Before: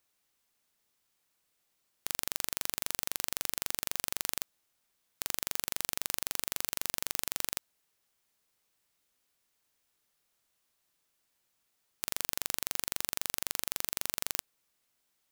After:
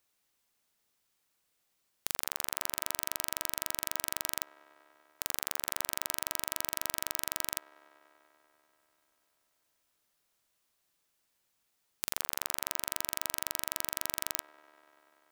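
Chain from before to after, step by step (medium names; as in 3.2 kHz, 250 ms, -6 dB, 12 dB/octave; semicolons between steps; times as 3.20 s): feedback echo behind a band-pass 97 ms, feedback 85%, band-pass 770 Hz, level -15 dB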